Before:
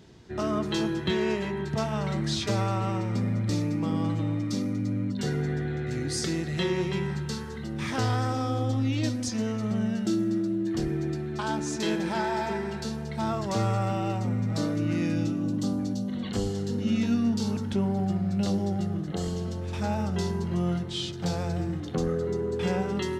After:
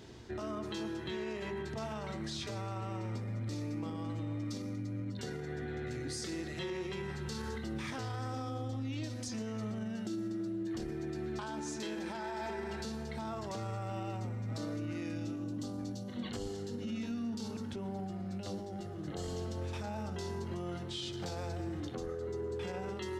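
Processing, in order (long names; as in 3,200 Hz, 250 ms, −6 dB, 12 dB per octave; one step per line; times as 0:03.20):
convolution reverb RT60 0.30 s, pre-delay 110 ms, DRR 18 dB
speech leveller
parametric band 170 Hz −13.5 dB 0.2 octaves
brickwall limiter −26 dBFS, peak gain reduction 12.5 dB
mains-hum notches 50/100/150/200/250 Hz
level −5 dB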